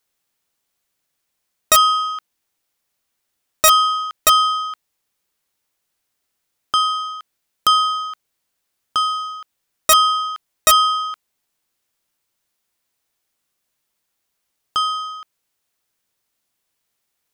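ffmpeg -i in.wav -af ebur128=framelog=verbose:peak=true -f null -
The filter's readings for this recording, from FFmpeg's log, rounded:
Integrated loudness:
  I:         -16.7 LUFS
  Threshold: -27.7 LUFS
Loudness range:
  LRA:        10.9 LU
  Threshold: -40.6 LUFS
  LRA low:   -29.2 LUFS
  LRA high:  -18.2 LUFS
True peak:
  Peak:       -0.1 dBFS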